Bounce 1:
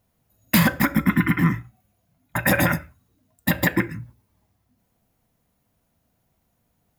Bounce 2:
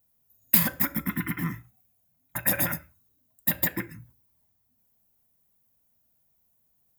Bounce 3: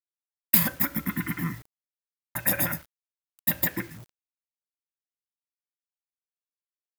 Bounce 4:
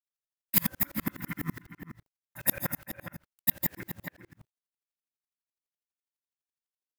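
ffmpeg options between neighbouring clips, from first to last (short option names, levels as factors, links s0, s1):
-af "aemphasis=mode=production:type=50fm,volume=0.282"
-af "acrusher=bits=7:mix=0:aa=0.000001"
-filter_complex "[0:a]asplit=2[s0][s1];[s1]adelay=408.2,volume=0.447,highshelf=f=4000:g=-9.18[s2];[s0][s2]amix=inputs=2:normalize=0,aeval=exprs='val(0)*pow(10,-37*if(lt(mod(-12*n/s,1),2*abs(-12)/1000),1-mod(-12*n/s,1)/(2*abs(-12)/1000),(mod(-12*n/s,1)-2*abs(-12)/1000)/(1-2*abs(-12)/1000))/20)':c=same,volume=1.5"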